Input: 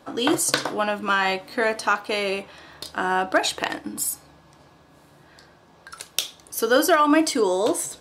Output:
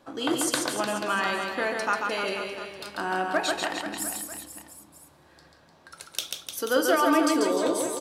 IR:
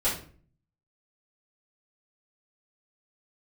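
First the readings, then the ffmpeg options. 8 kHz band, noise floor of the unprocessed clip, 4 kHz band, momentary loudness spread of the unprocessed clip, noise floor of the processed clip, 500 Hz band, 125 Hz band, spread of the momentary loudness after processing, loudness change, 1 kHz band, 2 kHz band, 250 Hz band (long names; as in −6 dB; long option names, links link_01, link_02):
−4.0 dB, −54 dBFS, −4.0 dB, 11 LU, −57 dBFS, −4.0 dB, −4.5 dB, 14 LU, −4.0 dB, −4.0 dB, −4.0 dB, −3.0 dB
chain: -filter_complex "[0:a]aecho=1:1:140|301|486.2|699.1|943.9:0.631|0.398|0.251|0.158|0.1,asplit=2[link_01][link_02];[1:a]atrim=start_sample=2205[link_03];[link_02][link_03]afir=irnorm=-1:irlink=0,volume=-22dB[link_04];[link_01][link_04]amix=inputs=2:normalize=0,volume=-7dB"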